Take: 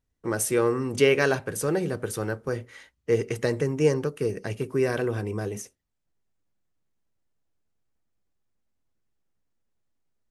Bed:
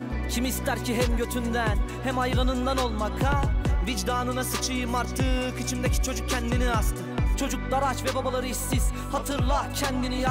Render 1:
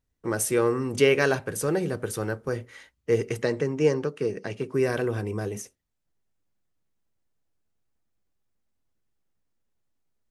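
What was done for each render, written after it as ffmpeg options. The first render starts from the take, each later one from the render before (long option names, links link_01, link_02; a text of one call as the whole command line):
ffmpeg -i in.wav -filter_complex "[0:a]asettb=1/sr,asplit=3[link_01][link_02][link_03];[link_01]atrim=end=3.424[link_04];[link_02]atrim=start=3.42:end=4.74,asetpts=PTS-STARTPTS,afade=type=in:duration=0.004:curve=qsin,afade=type=out:start_time=1.316:duration=0.004:curve=qsin,highpass=140,lowpass=6200[link_05];[link_03]atrim=start=4.736[link_06];[link_04][link_05]acrossfade=duration=0.004:curve1=hsin:curve2=qsin[link_07];[link_07][link_06]acrossfade=duration=0.004:curve1=qsin:curve2=hsin" out.wav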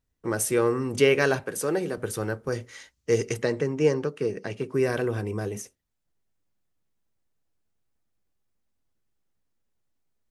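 ffmpeg -i in.wav -filter_complex "[0:a]asettb=1/sr,asplit=3[link_01][link_02][link_03];[link_01]atrim=end=1.434[link_04];[link_02]atrim=start=1.43:end=1.98,asetpts=PTS-STARTPTS,afade=type=in:duration=0.004:curve=qsin,afade=type=out:start_time=0.546:duration=0.004:curve=qsin,highpass=210[link_05];[link_03]atrim=start=1.976[link_06];[link_04][link_05]acrossfade=duration=0.004:curve1=hsin:curve2=qsin[link_07];[link_07][link_06]acrossfade=duration=0.004:curve1=qsin:curve2=hsin,asettb=1/sr,asplit=3[link_08][link_09][link_10];[link_08]atrim=end=2.524[link_11];[link_09]atrim=start=2.52:end=3.34,asetpts=PTS-STARTPTS,afade=type=in:duration=0.004:curve=qsin,afade=type=out:start_time=0.816:duration=0.004:curve=qsin,equalizer=frequency=6000:width_type=o:width=1.2:gain=10[link_12];[link_10]atrim=start=3.336[link_13];[link_11][link_12]acrossfade=duration=0.004:curve1=hsin:curve2=qsin[link_14];[link_14][link_13]acrossfade=duration=0.004:curve1=qsin:curve2=hsin" out.wav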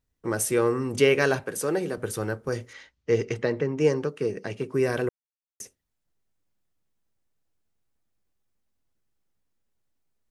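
ffmpeg -i in.wav -filter_complex "[0:a]asettb=1/sr,asplit=3[link_01][link_02][link_03];[link_01]atrim=end=2.734[link_04];[link_02]atrim=start=2.73:end=3.78,asetpts=PTS-STARTPTS,afade=type=in:duration=0.004:curve=qsin,afade=type=out:start_time=1.046:duration=0.004:curve=qsin,lowpass=3900[link_05];[link_03]atrim=start=3.776[link_06];[link_04][link_05]acrossfade=duration=0.004:curve1=hsin:curve2=qsin[link_07];[link_07][link_06]acrossfade=duration=0.004:curve1=qsin:curve2=hsin,asplit=3[link_08][link_09][link_10];[link_08]atrim=end=5.09,asetpts=PTS-STARTPTS,afade=type=out:start_time=5.086:duration=0.004:curve=hsin[link_11];[link_09]atrim=start=5.09:end=5.6,asetpts=PTS-STARTPTS,volume=0[link_12];[link_10]atrim=start=5.6,asetpts=PTS-STARTPTS,afade=type=in:duration=0.004:curve=hsin[link_13];[link_11][link_12][link_13]concat=n=3:v=0:a=1" out.wav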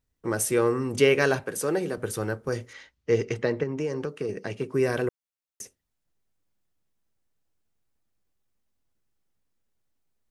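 ffmpeg -i in.wav -filter_complex "[0:a]asettb=1/sr,asplit=3[link_01][link_02][link_03];[link_01]atrim=end=3.634[link_04];[link_02]atrim=start=3.63:end=4.29,asetpts=PTS-STARTPTS,afade=type=in:duration=0.004:curve=qsin,afade=type=out:start_time=0.656:duration=0.004:curve=qsin,acompressor=threshold=-25dB:ratio=6:attack=3.2:release=140:knee=1:detection=peak[link_05];[link_03]atrim=start=4.286[link_06];[link_04][link_05]acrossfade=duration=0.004:curve1=hsin:curve2=qsin[link_07];[link_07][link_06]acrossfade=duration=0.004:curve1=qsin:curve2=hsin" out.wav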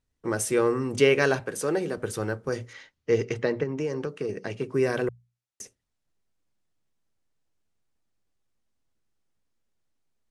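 ffmpeg -i in.wav -af "lowpass=9400,bandreject=frequency=60:width_type=h:width=6,bandreject=frequency=120:width_type=h:width=6,bandreject=frequency=180:width_type=h:width=6" out.wav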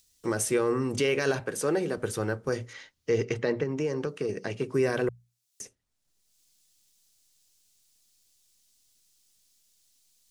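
ffmpeg -i in.wav -filter_complex "[0:a]acrossover=split=3700[link_01][link_02];[link_01]alimiter=limit=-16.5dB:level=0:latency=1:release=41[link_03];[link_02]acompressor=mode=upward:threshold=-47dB:ratio=2.5[link_04];[link_03][link_04]amix=inputs=2:normalize=0" out.wav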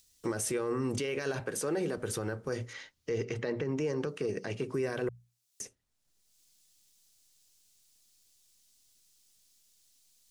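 ffmpeg -i in.wav -af "alimiter=limit=-24dB:level=0:latency=1:release=72" out.wav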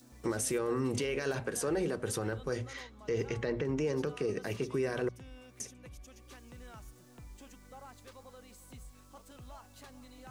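ffmpeg -i in.wav -i bed.wav -filter_complex "[1:a]volume=-26dB[link_01];[0:a][link_01]amix=inputs=2:normalize=0" out.wav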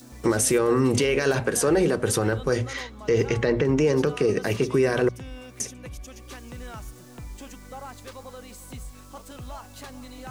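ffmpeg -i in.wav -af "volume=11.5dB" out.wav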